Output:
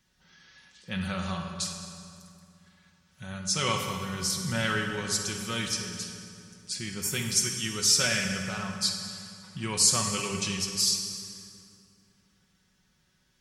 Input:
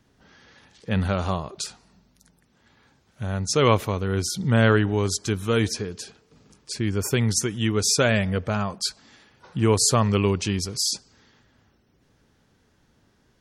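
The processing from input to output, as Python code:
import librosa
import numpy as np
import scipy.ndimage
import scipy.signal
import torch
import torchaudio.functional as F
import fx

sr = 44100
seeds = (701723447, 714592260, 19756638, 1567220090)

y = fx.tone_stack(x, sr, knobs='5-5-5')
y = y + 0.5 * np.pad(y, (int(5.4 * sr / 1000.0), 0))[:len(y)]
y = fx.rev_fdn(y, sr, rt60_s=2.5, lf_ratio=1.25, hf_ratio=0.7, size_ms=35.0, drr_db=2.0)
y = F.gain(torch.from_numpy(y), 4.0).numpy()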